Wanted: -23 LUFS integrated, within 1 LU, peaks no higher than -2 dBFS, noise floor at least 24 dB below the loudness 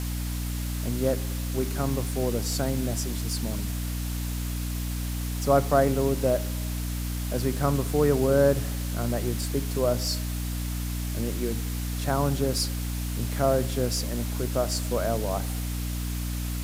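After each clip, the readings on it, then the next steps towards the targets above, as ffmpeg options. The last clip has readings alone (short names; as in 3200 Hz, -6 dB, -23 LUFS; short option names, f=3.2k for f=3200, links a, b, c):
hum 60 Hz; harmonics up to 300 Hz; hum level -28 dBFS; noise floor -30 dBFS; noise floor target -52 dBFS; loudness -27.5 LUFS; peak -7.5 dBFS; loudness target -23.0 LUFS
-> -af "bandreject=f=60:t=h:w=4,bandreject=f=120:t=h:w=4,bandreject=f=180:t=h:w=4,bandreject=f=240:t=h:w=4,bandreject=f=300:t=h:w=4"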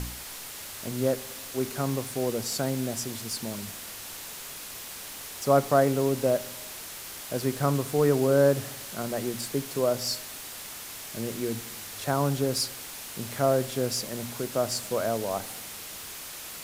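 hum none; noise floor -41 dBFS; noise floor target -53 dBFS
-> -af "afftdn=nr=12:nf=-41"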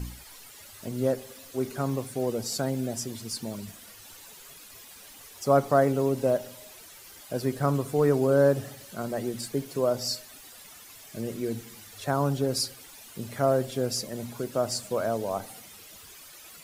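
noise floor -49 dBFS; noise floor target -52 dBFS
-> -af "afftdn=nr=6:nf=-49"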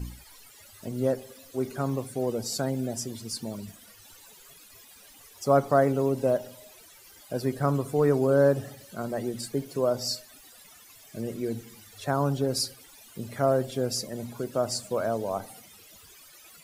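noise floor -53 dBFS; loudness -28.0 LUFS; peak -8.5 dBFS; loudness target -23.0 LUFS
-> -af "volume=5dB"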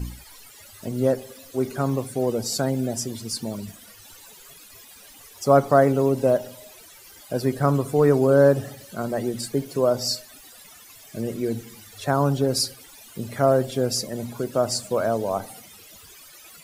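loudness -23.0 LUFS; peak -3.5 dBFS; noise floor -48 dBFS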